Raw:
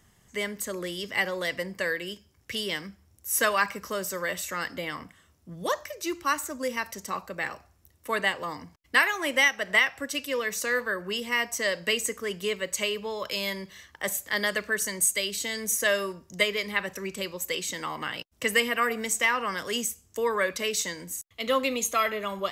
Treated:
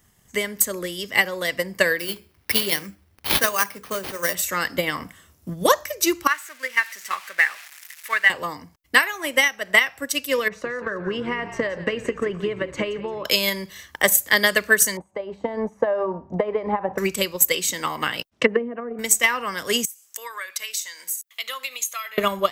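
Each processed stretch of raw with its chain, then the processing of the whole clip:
1.99–4.35 s: hum notches 60/120/180/240/300/360/420/480/540 Hz + sample-rate reducer 7.5 kHz
6.27–8.30 s: zero-crossing glitches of -25 dBFS + band-pass filter 1.9 kHz, Q 2.3
10.48–13.25 s: low-pass 1.6 kHz + compression 10:1, threshold -34 dBFS + frequency-shifting echo 173 ms, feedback 45%, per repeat -54 Hz, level -11.5 dB
14.97–16.98 s: hum notches 50/100/150/200/250/300 Hz + compression 16:1, threshold -32 dBFS + resonant low-pass 830 Hz, resonance Q 4.7
18.30–18.99 s: band-pass 130–3600 Hz + low-pass that closes with the level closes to 440 Hz, closed at -22.5 dBFS
19.85–22.18 s: high-pass 1.3 kHz + compression 2:1, threshold -53 dBFS
whole clip: treble shelf 11 kHz +11.5 dB; transient shaper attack +8 dB, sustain -1 dB; level rider gain up to 11.5 dB; trim -1 dB

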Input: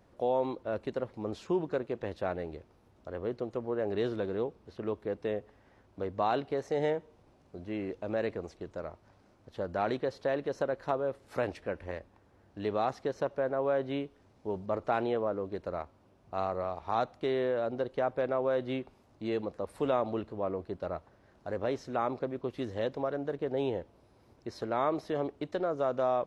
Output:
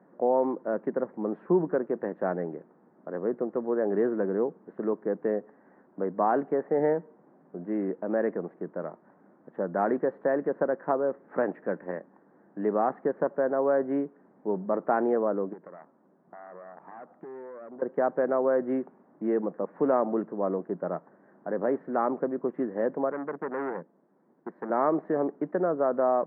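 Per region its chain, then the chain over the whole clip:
15.53–17.82 s: valve stage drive 33 dB, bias 0.75 + compression 5:1, threshold -46 dBFS
23.10–24.70 s: companding laws mixed up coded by A + resonant low shelf 110 Hz -10.5 dB, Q 1.5 + transformer saturation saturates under 1.8 kHz
whole clip: Chebyshev band-pass 170–1800 Hz, order 4; bass shelf 430 Hz +5.5 dB; trim +3.5 dB

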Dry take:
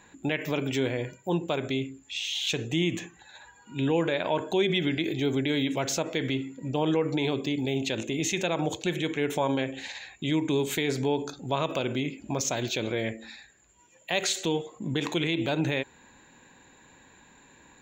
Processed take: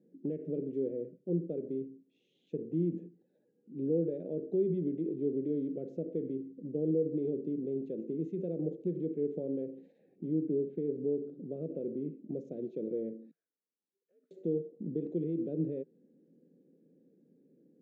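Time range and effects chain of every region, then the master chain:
9.99–12.02 s: distance through air 240 m + upward compressor, threshold -34 dBFS
13.31–14.31 s: frequency shift -130 Hz + band-pass filter 1.3 kHz, Q 4.8 + compression 3:1, threshold -53 dBFS
whole clip: elliptic band-pass 160–490 Hz, stop band 40 dB; dynamic bell 260 Hz, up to -5 dB, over -42 dBFS, Q 4.9; trim -3 dB

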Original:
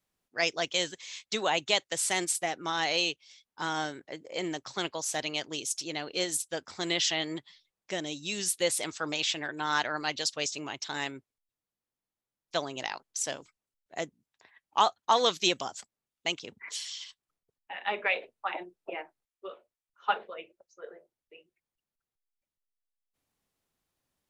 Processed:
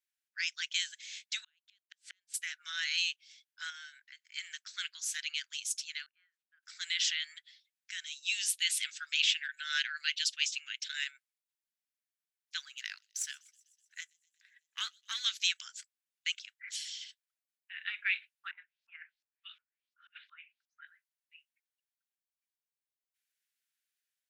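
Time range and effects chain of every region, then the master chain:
1.44–2.34 s: low-pass 4.1 kHz + dynamic bell 2.1 kHz, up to -7 dB, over -44 dBFS, Q 2.9 + inverted gate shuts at -23 dBFS, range -40 dB
3.70–4.33 s: peaking EQ 9.2 kHz -9 dB 0.58 oct + compression 2:1, threshold -40 dBFS
6.06–6.63 s: low-pass 1.2 kHz 24 dB/octave + differentiator
8.24–11.04 s: high-pass 1.3 kHz 24 dB/octave + dynamic bell 2.9 kHz, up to +7 dB, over -46 dBFS, Q 1.8
12.60–15.25 s: partial rectifier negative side -3 dB + feedback echo behind a high-pass 125 ms, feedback 69%, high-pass 4.7 kHz, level -23 dB
18.51–20.87 s: LFO low-pass saw up 2.8 Hz 820–5500 Hz + amplifier tone stack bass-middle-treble 10-0-10 + compressor with a negative ratio -47 dBFS, ratio -0.5
whole clip: Chebyshev high-pass 1.5 kHz, order 5; level rider gain up to 5 dB; trim -7 dB

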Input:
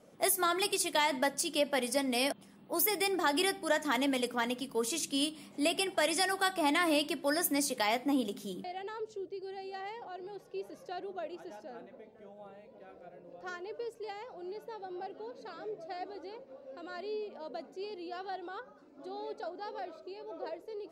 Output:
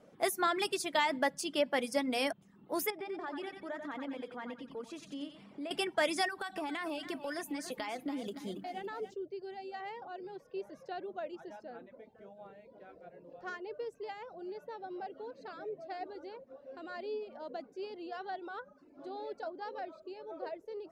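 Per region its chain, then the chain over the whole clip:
2.90–5.71 s: low-pass 1.5 kHz 6 dB/octave + compression 2:1, threshold -45 dBFS + thinning echo 90 ms, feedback 46%, high-pass 340 Hz, level -4 dB
6.28–9.14 s: compression 16:1, threshold -33 dBFS + bit-crushed delay 281 ms, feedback 55%, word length 10-bit, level -10.5 dB
whole clip: treble shelf 6.2 kHz -11.5 dB; reverb removal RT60 0.54 s; peaking EQ 1.6 kHz +2.5 dB 0.4 oct

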